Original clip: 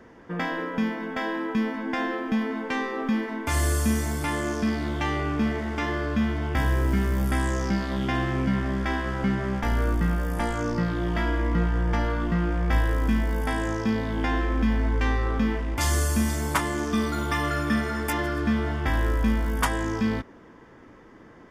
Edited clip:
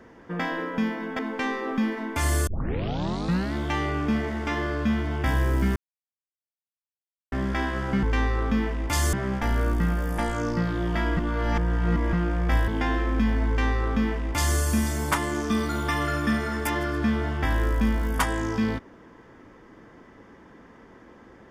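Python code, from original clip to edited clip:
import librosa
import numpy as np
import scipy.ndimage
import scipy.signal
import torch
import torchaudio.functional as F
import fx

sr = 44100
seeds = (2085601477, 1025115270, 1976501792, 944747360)

y = fx.edit(x, sr, fx.cut(start_s=1.19, length_s=1.31),
    fx.tape_start(start_s=3.78, length_s=1.07),
    fx.silence(start_s=7.07, length_s=1.56),
    fx.reverse_span(start_s=11.38, length_s=0.96),
    fx.cut(start_s=12.89, length_s=1.22),
    fx.duplicate(start_s=14.91, length_s=1.1, to_s=9.34), tone=tone)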